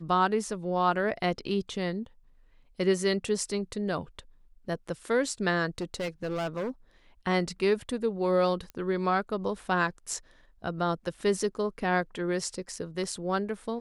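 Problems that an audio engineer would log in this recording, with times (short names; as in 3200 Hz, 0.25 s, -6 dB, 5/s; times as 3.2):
5.78–6.7 clipped -28 dBFS
8.7 pop -27 dBFS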